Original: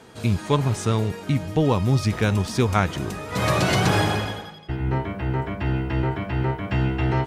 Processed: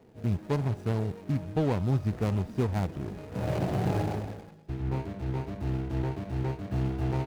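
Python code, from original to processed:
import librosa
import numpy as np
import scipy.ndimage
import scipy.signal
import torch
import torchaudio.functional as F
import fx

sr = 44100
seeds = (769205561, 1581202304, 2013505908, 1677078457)

y = scipy.signal.medfilt(x, 41)
y = fx.dynamic_eq(y, sr, hz=760.0, q=2.2, threshold_db=-40.0, ratio=4.0, max_db=4)
y = y * 10.0 ** (-6.5 / 20.0)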